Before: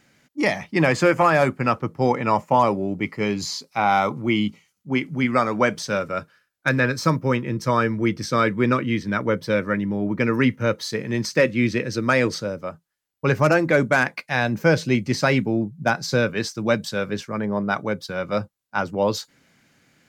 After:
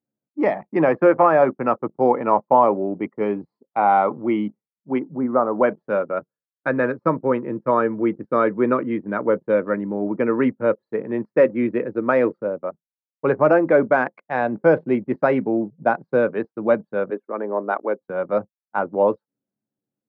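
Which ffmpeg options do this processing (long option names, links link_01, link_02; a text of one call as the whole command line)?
ffmpeg -i in.wav -filter_complex "[0:a]asplit=3[link_01][link_02][link_03];[link_01]afade=type=out:start_time=4.98:duration=0.02[link_04];[link_02]lowpass=frequency=1300:width=0.5412,lowpass=frequency=1300:width=1.3066,afade=type=in:start_time=4.98:duration=0.02,afade=type=out:start_time=5.62:duration=0.02[link_05];[link_03]afade=type=in:start_time=5.62:duration=0.02[link_06];[link_04][link_05][link_06]amix=inputs=3:normalize=0,asettb=1/sr,asplit=3[link_07][link_08][link_09];[link_07]atrim=end=17.104[link_10];[link_08]atrim=start=17.1:end=18.01,asetpts=PTS-STARTPTS,afade=type=in:duration=0.004:curve=qsin,afade=type=out:start_time=0.906:duration=0.004:curve=qsin,highpass=frequency=260:width=0.5412,highpass=frequency=260:width=1.3066[link_11];[link_09]atrim=start=18.006[link_12];[link_10][link_11]acrossfade=duration=0.004:curve1=hsin:curve2=qsin[link_13];[link_13][link_12]acrossfade=duration=0.004:curve1=qsin:curve2=hsin,lowpass=1000,anlmdn=3.98,highpass=310,volume=5dB" out.wav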